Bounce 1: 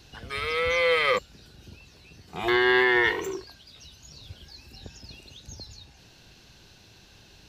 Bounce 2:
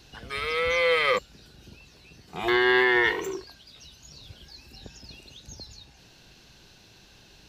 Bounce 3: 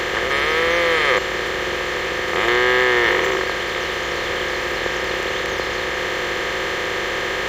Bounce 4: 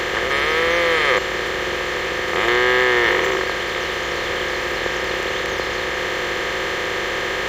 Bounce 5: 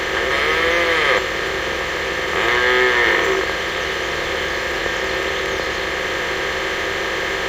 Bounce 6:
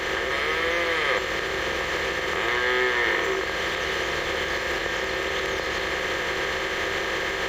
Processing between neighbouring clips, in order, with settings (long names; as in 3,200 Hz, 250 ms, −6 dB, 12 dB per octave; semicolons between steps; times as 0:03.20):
parametric band 89 Hz −5.5 dB 0.56 octaves
compressor on every frequency bin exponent 0.2
no processing that can be heard
convolution reverb RT60 0.30 s, pre-delay 7 ms, DRR 5 dB
camcorder AGC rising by 43 dB per second; level −7.5 dB